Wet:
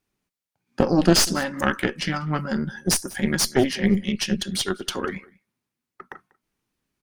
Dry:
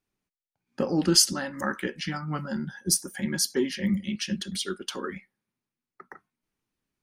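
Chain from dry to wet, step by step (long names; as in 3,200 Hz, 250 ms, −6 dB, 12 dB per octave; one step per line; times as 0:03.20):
harmonic generator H 6 −14 dB, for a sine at −4.5 dBFS
slap from a distant wall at 33 metres, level −24 dB
slew-rate limiting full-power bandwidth 510 Hz
level +5.5 dB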